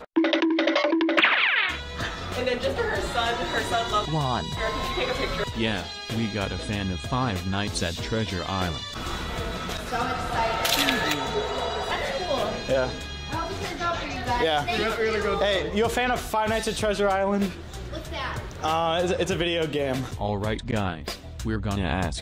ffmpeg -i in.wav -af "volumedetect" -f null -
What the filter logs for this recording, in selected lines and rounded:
mean_volume: -26.1 dB
max_volume: -6.7 dB